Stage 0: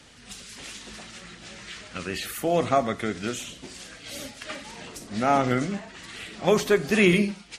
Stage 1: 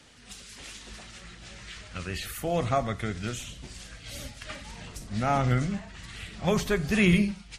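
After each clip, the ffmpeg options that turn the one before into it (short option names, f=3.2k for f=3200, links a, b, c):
-af "asubboost=boost=8.5:cutoff=110,volume=-3.5dB"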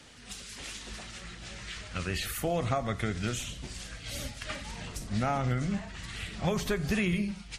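-af "acompressor=threshold=-27dB:ratio=12,volume=2dB"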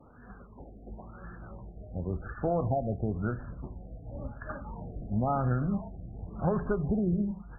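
-af "afftfilt=real='re*lt(b*sr/1024,770*pow(1800/770,0.5+0.5*sin(2*PI*0.95*pts/sr)))':imag='im*lt(b*sr/1024,770*pow(1800/770,0.5+0.5*sin(2*PI*0.95*pts/sr)))':win_size=1024:overlap=0.75,volume=1.5dB"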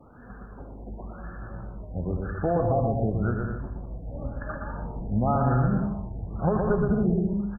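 -af "aecho=1:1:120|198|248.7|281.7|303.1:0.631|0.398|0.251|0.158|0.1,volume=3.5dB"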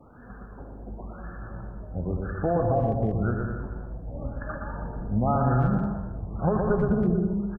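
-filter_complex "[0:a]asplit=2[a][b];[b]adelay=320,highpass=300,lowpass=3.4k,asoftclip=type=hard:threshold=-19dB,volume=-13dB[c];[a][c]amix=inputs=2:normalize=0"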